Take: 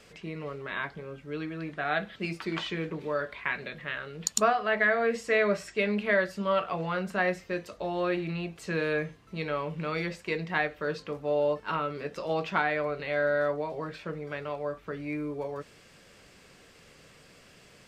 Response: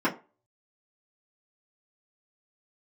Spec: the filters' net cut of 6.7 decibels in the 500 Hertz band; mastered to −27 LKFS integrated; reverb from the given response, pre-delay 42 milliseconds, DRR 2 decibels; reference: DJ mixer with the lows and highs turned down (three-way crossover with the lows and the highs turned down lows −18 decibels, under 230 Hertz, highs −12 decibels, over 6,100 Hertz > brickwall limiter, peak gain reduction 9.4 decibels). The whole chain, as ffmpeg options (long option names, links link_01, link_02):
-filter_complex "[0:a]equalizer=frequency=500:width_type=o:gain=-8,asplit=2[link_01][link_02];[1:a]atrim=start_sample=2205,adelay=42[link_03];[link_02][link_03]afir=irnorm=-1:irlink=0,volume=-15dB[link_04];[link_01][link_04]amix=inputs=2:normalize=0,acrossover=split=230 6100:gain=0.126 1 0.251[link_05][link_06][link_07];[link_05][link_06][link_07]amix=inputs=3:normalize=0,volume=7dB,alimiter=limit=-15dB:level=0:latency=1"